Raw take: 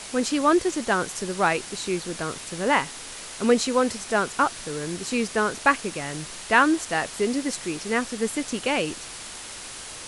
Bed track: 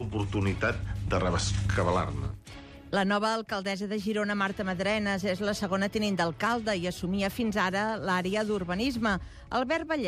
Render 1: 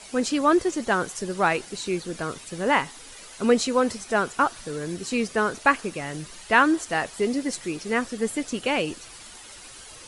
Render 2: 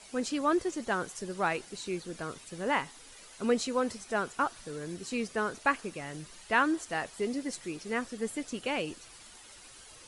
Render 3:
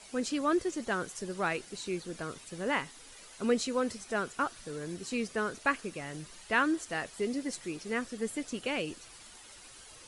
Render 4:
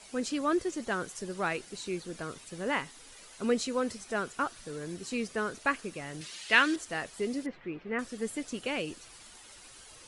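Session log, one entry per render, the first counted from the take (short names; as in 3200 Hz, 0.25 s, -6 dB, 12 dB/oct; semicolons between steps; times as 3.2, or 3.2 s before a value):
denoiser 10 dB, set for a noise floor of -39 dBFS
gain -8 dB
dynamic EQ 860 Hz, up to -5 dB, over -44 dBFS, Q 1.9
6.21–6.76 weighting filter D; 7.46–7.99 LPF 2600 Hz 24 dB/oct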